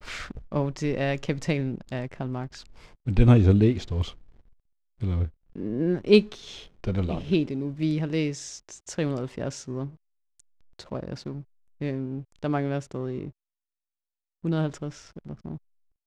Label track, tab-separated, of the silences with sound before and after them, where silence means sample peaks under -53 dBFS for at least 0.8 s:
13.310000	14.440000	silence